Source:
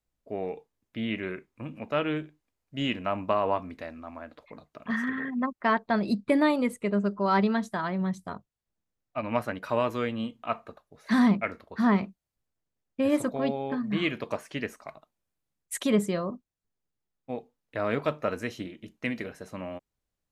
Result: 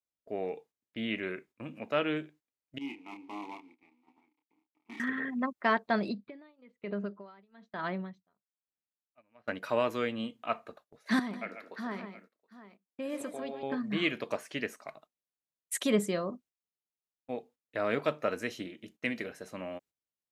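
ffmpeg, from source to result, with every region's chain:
-filter_complex "[0:a]asettb=1/sr,asplit=3[a][b][c];[a]atrim=end=2.784[d];[b]atrim=start=2.78:end=5,asetpts=PTS-STARTPTS,afade=t=in:d=0.004:c=qsin,afade=t=out:st=2.216:d=0.004:c=qsin,acrusher=bits=5:dc=4:mix=0:aa=0.000001,asplit=3[e][f][g];[e]bandpass=f=300:t=q:w=8,volume=0dB[h];[f]bandpass=f=870:t=q:w=8,volume=-6dB[i];[g]bandpass=f=2.24k:t=q:w=8,volume=-9dB[j];[h][i][j]amix=inputs=3:normalize=0,asplit=2[k][l];[l]adelay=29,volume=-5.5dB[m];[k][m]amix=inputs=2:normalize=0,atrim=end_sample=97902[n];[c]atrim=start=4.996[o];[d][n]acrossfade=d=0.004:c1=hsin:c2=qsin[p];[p][o]acrossfade=d=0.004:c1=qsin:c2=hsin,asettb=1/sr,asplit=3[q][r][s];[q]atrim=end=6.084[t];[r]atrim=start=6.08:end=9.48,asetpts=PTS-STARTPTS,afade=t=in:d=0.004:c=qsin,afade=t=out:st=3.396:d=0.004:c=qsin,lowpass=f=4.3k:w=0.5412,lowpass=f=4.3k:w=1.3066,acompressor=threshold=-25dB:ratio=20:attack=3.2:release=140:knee=1:detection=peak,aeval=exprs='val(0)*pow(10,-26*(0.5-0.5*cos(2*PI*1.1*n/s))/20)':c=same[u];[s]atrim=start=9.476[v];[t][u]acrossfade=d=0.004:c1=hsin:c2=qsin[w];[w][v]acrossfade=d=0.004:c1=qsin:c2=hsin,asettb=1/sr,asplit=3[x][y][z];[x]atrim=end=11.194[aa];[y]atrim=start=11.19:end=13.63,asetpts=PTS-STARTPTS,afade=t=in:d=0.004:c=qsin,afade=t=out:st=2.436:d=0.004:c=qsin,highpass=220,acompressor=threshold=-38dB:ratio=2:attack=3.2:release=140:knee=1:detection=peak,aecho=1:1:116|144|722:0.126|0.376|0.168,atrim=end_sample=107604[ab];[z]atrim=start=13.626[ac];[aa][ab]acrossfade=d=0.004:c1=hsin:c2=qsin[ad];[ad][ac]acrossfade=d=0.004:c1=qsin:c2=hsin,highpass=f=290:p=1,agate=range=-12dB:threshold=-56dB:ratio=16:detection=peak,equalizer=f=990:t=o:w=0.77:g=-4"

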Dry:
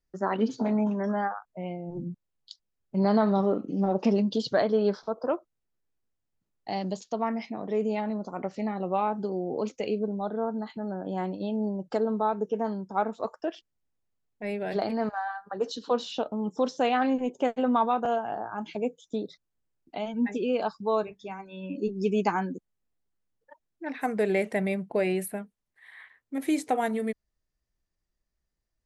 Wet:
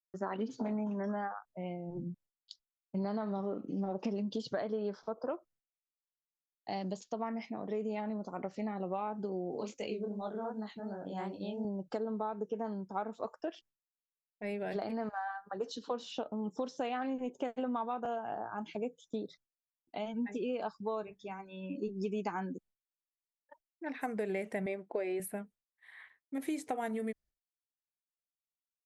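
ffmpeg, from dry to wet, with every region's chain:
-filter_complex "[0:a]asettb=1/sr,asplit=3[a][b][c];[a]atrim=end=9.514[d];[b]atrim=start=9.51:end=11.65,asetpts=PTS-STARTPTS,afade=t=in:d=0.004:c=qsin,afade=t=out:st=2.136:d=0.004:c=qsin,highshelf=f=2.7k:g=8,flanger=delay=18:depth=7.5:speed=2.7[e];[c]atrim=start=11.646[f];[d][e]acrossfade=d=0.004:c1=hsin:c2=qsin[g];[g][f]acrossfade=d=0.004:c1=qsin:c2=hsin,asettb=1/sr,asplit=3[h][i][j];[h]atrim=end=24.664[k];[i]atrim=start=24.66:end=25.2,asetpts=PTS-STARTPTS,afade=t=in:d=0.004:c=qsin,afade=t=out:st=0.536:d=0.004:c=qsin,lowpass=5.9k,lowshelf=f=240:t=q:w=1.5:g=-12,bandreject=f=2.8k:w=13[l];[j]atrim=start=25.196[m];[k][l]acrossfade=d=0.004:c1=hsin:c2=qsin[n];[n][m]acrossfade=d=0.004:c1=qsin:c2=hsin,agate=range=-33dB:threshold=-51dB:ratio=3:detection=peak,adynamicequalizer=threshold=0.00112:dfrequency=4100:dqfactor=2.9:tfrequency=4100:tqfactor=2.9:attack=5:release=100:ratio=0.375:range=3:mode=cutabove:tftype=bell,acompressor=threshold=-27dB:ratio=6,volume=-5dB"

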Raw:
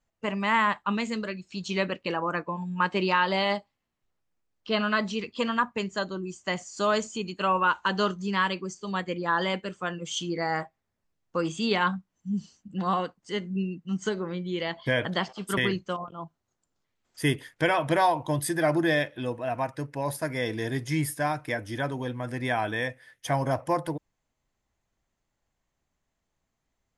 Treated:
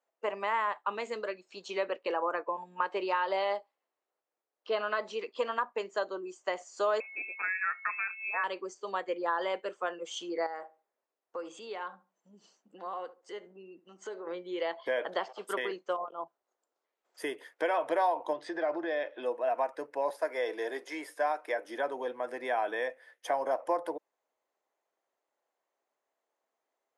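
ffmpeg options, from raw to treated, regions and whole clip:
-filter_complex "[0:a]asettb=1/sr,asplit=3[a][b][c];[a]atrim=end=7.004[d];[b]atrim=start=7:end=8.44,asetpts=PTS-STARTPTS,afade=t=in:d=0.004:c=qsin,afade=t=out:st=1.436:d=0.004:c=qsin,aeval=exprs='val(0)+0.0112*sin(2*PI*610*n/s)':c=same,lowpass=f=2.4k:t=q:w=0.5098,lowpass=f=2.4k:t=q:w=0.6013,lowpass=f=2.4k:t=q:w=0.9,lowpass=f=2.4k:t=q:w=2.563,afreqshift=-2800[e];[c]atrim=start=8.436[f];[d][e]acrossfade=d=0.004:c1=hsin:c2=qsin[g];[g][f]acrossfade=d=0.004:c1=qsin:c2=hsin,asettb=1/sr,asplit=3[h][i][j];[h]atrim=end=10.464[k];[i]atrim=start=10.46:end=14.27,asetpts=PTS-STARTPTS,afade=t=in:d=0.004:c=qsin,afade=t=out:st=3.806:d=0.004:c=qsin,acompressor=threshold=-38dB:ratio=3:attack=3.2:release=140:knee=1:detection=peak,asplit=2[l][m];[m]adelay=73,lowpass=f=1.2k:p=1,volume=-16.5dB,asplit=2[n][o];[o]adelay=73,lowpass=f=1.2k:p=1,volume=0.29,asplit=2[p][q];[q]adelay=73,lowpass=f=1.2k:p=1,volume=0.29[r];[l][n][p][r]amix=inputs=4:normalize=0,atrim=end_sample=168021[s];[j]atrim=start=14.266[t];[k][s]acrossfade=d=0.004:c1=hsin:c2=qsin[u];[u][t]acrossfade=d=0.004:c1=qsin:c2=hsin,asettb=1/sr,asplit=3[v][w][x];[v]atrim=end=18.334[y];[w]atrim=start=18.33:end=19.23,asetpts=PTS-STARTPTS,afade=t=in:d=0.004:c=qsin,afade=t=out:st=0.896:d=0.004:c=qsin,lowpass=f=5.1k:w=0.5412,lowpass=f=5.1k:w=1.3066,acompressor=threshold=-26dB:ratio=4:attack=3.2:release=140:knee=1:detection=peak[z];[x]atrim=start=19.226[aa];[y][z]acrossfade=d=0.004:c1=hsin:c2=qsin[ab];[ab][aa]acrossfade=d=0.004:c1=qsin:c2=hsin,asettb=1/sr,asplit=3[ac][ad][ae];[ac]atrim=end=20.104[af];[ad]atrim=start=20.1:end=21.65,asetpts=PTS-STARTPTS,afade=t=in:d=0.004:c=qsin,afade=t=out:st=1.546:d=0.004:c=qsin,acrossover=split=6200[ag][ah];[ah]acompressor=threshold=-47dB:ratio=4:attack=1:release=60[ai];[ag][ai]amix=inputs=2:normalize=0,highpass=330[aj];[ae]atrim=start=21.646[ak];[af][aj]acrossfade=d=0.004:c1=hsin:c2=qsin[al];[al][ak]acrossfade=d=0.004:c1=qsin:c2=hsin,acompressor=threshold=-27dB:ratio=3,highpass=f=440:w=0.5412,highpass=f=440:w=1.3066,tiltshelf=f=1.4k:g=7.5,volume=-2dB"

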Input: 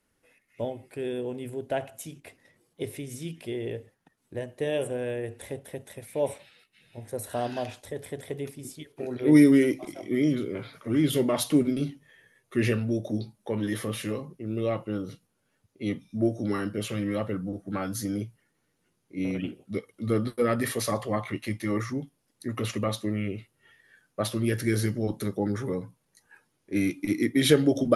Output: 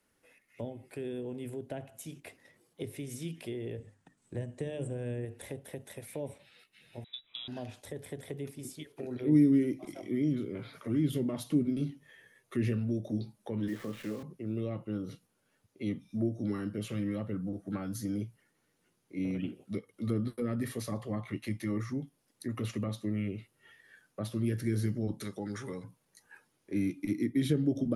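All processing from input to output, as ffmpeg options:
-filter_complex "[0:a]asettb=1/sr,asplit=3[a][b][c];[a]atrim=end=3.784[d];[b]atrim=start=3.78:end=5.25,asetpts=PTS-STARTPTS,afade=t=in:d=0.004:c=qsin,afade=t=out:st=1.466:d=0.004:c=qsin,lowpass=f=8k:t=q:w=4.1,bass=f=250:g=7,treble=f=4k:g=-4,bandreject=f=50:t=h:w=6,bandreject=f=100:t=h:w=6,bandreject=f=150:t=h:w=6,bandreject=f=200:t=h:w=6,bandreject=f=250:t=h:w=6,bandreject=f=300:t=h:w=6[e];[c]atrim=start=5.246[f];[d][e]acrossfade=d=0.004:c1=hsin:c2=qsin[g];[g][f]acrossfade=d=0.004:c1=qsin:c2=hsin,asettb=1/sr,asplit=3[h][i][j];[h]atrim=end=7.044[k];[i]atrim=start=7.04:end=7.48,asetpts=PTS-STARTPTS,afade=t=in:d=0.004:c=qsin,afade=t=out:st=0.436:d=0.004:c=qsin,aeval=exprs='val(0)+0.5*0.00708*sgn(val(0))':c=same,lowpass=f=3.4k:t=q:w=0.5098,lowpass=f=3.4k:t=q:w=0.6013,lowpass=f=3.4k:t=q:w=0.9,lowpass=f=3.4k:t=q:w=2.563,afreqshift=-4000,agate=range=-17dB:threshold=-34dB:ratio=16:release=100:detection=peak[l];[j]atrim=start=7.476[m];[k][l]acrossfade=d=0.004:c1=hsin:c2=qsin[n];[n][m]acrossfade=d=0.004:c1=qsin:c2=hsin,asettb=1/sr,asplit=3[o][p][q];[o]atrim=end=13.684[r];[p]atrim=start=13.68:end=14.23,asetpts=PTS-STARTPTS,afade=t=in:d=0.004:c=qsin,afade=t=out:st=0.546:d=0.004:c=qsin,highpass=170,lowpass=2.3k,acrusher=bits=8:dc=4:mix=0:aa=0.000001[s];[q]atrim=start=14.226[t];[r][s]acrossfade=d=0.004:c1=hsin:c2=qsin[u];[u][t]acrossfade=d=0.004:c1=qsin:c2=hsin,asettb=1/sr,asplit=3[v][w][x];[v]atrim=end=25.214[y];[w]atrim=start=25.21:end=25.84,asetpts=PTS-STARTPTS,afade=t=in:d=0.004:c=qsin,afade=t=out:st=0.626:d=0.004:c=qsin,lowpass=f=10k:w=0.5412,lowpass=f=10k:w=1.3066,tiltshelf=f=880:g=-7.5[z];[x]atrim=start=25.836[aa];[y][z]acrossfade=d=0.004:c1=hsin:c2=qsin[ab];[ab][aa]acrossfade=d=0.004:c1=qsin:c2=hsin,lowshelf=f=120:g=-6,acrossover=split=280[ac][ad];[ad]acompressor=threshold=-43dB:ratio=4[ae];[ac][ae]amix=inputs=2:normalize=0"

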